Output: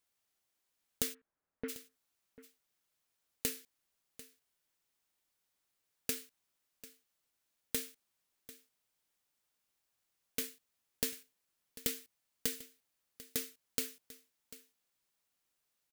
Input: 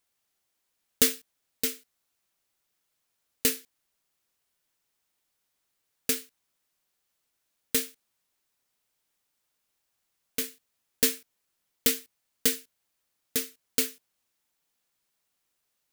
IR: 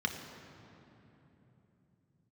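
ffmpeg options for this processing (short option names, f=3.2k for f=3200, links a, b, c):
-filter_complex "[0:a]asplit=3[a][b][c];[a]afade=t=out:st=1.13:d=0.02[d];[b]lowpass=f=1.7k:w=0.5412,lowpass=f=1.7k:w=1.3066,afade=t=in:st=1.13:d=0.02,afade=t=out:st=1.68:d=0.02[e];[c]afade=t=in:st=1.68:d=0.02[f];[d][e][f]amix=inputs=3:normalize=0,acompressor=threshold=-27dB:ratio=6,aecho=1:1:744:0.133,volume=-4.5dB"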